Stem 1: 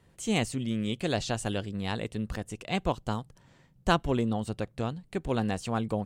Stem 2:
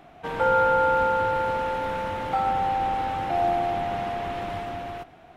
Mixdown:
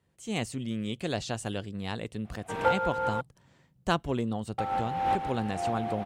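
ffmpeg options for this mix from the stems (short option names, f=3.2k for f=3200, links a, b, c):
-filter_complex "[0:a]volume=-10.5dB,asplit=2[a][b];[1:a]adelay=2250,volume=-3dB,asplit=3[c][d][e];[c]atrim=end=3.21,asetpts=PTS-STARTPTS,afade=t=out:st=3.206:d=0.004:c=hsin[f];[d]atrim=start=3.21:end=4.58,asetpts=PTS-STARTPTS,volume=0[g];[e]atrim=start=4.58,asetpts=PTS-STARTPTS,afade=t=in:d=0.004:c=hsin[h];[f][g][h]concat=n=3:v=0:a=1[i];[b]apad=whole_len=335734[j];[i][j]sidechaincompress=threshold=-50dB:ratio=12:attack=8.2:release=292[k];[a][k]amix=inputs=2:normalize=0,highpass=52,dynaudnorm=f=210:g=3:m=8dB"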